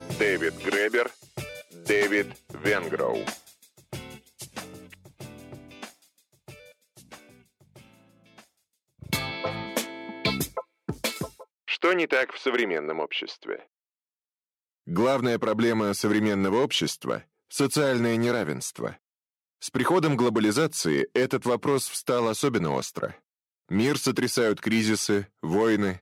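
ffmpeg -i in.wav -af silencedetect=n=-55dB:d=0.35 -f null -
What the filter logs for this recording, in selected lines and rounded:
silence_start: 8.47
silence_end: 8.99 | silence_duration: 0.52
silence_start: 13.66
silence_end: 14.87 | silence_duration: 1.21
silence_start: 18.97
silence_end: 19.61 | silence_duration: 0.64
silence_start: 23.20
silence_end: 23.69 | silence_duration: 0.50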